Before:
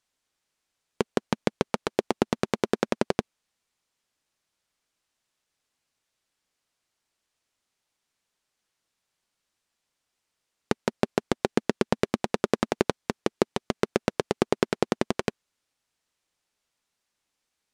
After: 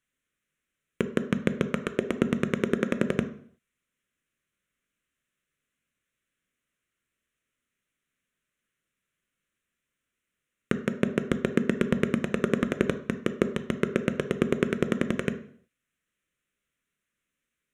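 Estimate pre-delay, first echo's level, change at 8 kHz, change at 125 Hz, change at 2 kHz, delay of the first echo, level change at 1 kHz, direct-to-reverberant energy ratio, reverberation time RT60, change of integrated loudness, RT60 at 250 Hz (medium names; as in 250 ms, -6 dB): 3 ms, no echo, -6.0 dB, +3.5 dB, +1.5 dB, no echo, -7.5 dB, 9.5 dB, 0.55 s, 0.0 dB, 0.55 s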